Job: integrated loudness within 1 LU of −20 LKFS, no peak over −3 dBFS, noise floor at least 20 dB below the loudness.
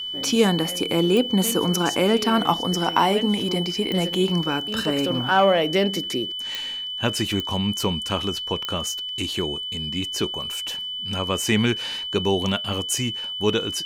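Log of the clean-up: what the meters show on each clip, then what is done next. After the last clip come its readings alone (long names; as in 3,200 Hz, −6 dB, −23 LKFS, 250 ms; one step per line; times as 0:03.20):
number of clicks 5; interfering tone 3,000 Hz; level of the tone −28 dBFS; integrated loudness −22.5 LKFS; sample peak −4.0 dBFS; target loudness −20.0 LKFS
→ click removal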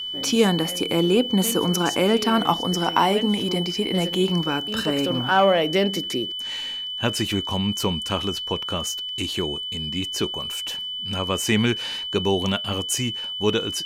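number of clicks 0; interfering tone 3,000 Hz; level of the tone −28 dBFS
→ notch filter 3,000 Hz, Q 30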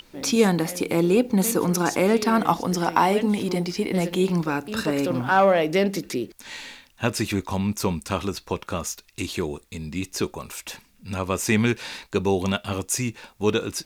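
interfering tone none found; integrated loudness −24.0 LKFS; sample peak −4.5 dBFS; target loudness −20.0 LKFS
→ level +4 dB
brickwall limiter −3 dBFS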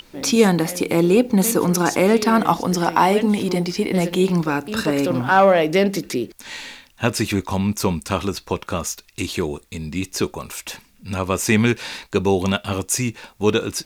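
integrated loudness −20.0 LKFS; sample peak −3.0 dBFS; background noise floor −53 dBFS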